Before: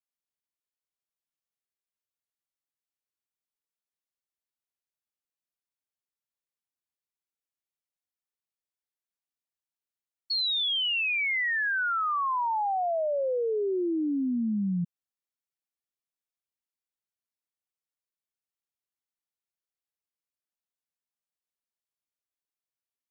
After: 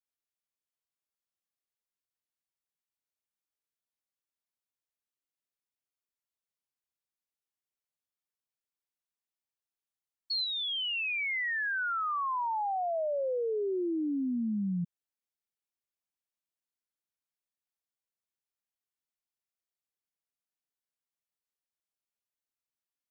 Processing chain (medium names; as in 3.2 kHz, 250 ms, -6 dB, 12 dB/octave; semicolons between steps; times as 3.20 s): 10.44–12.95 s: distance through air 110 m; trim -3.5 dB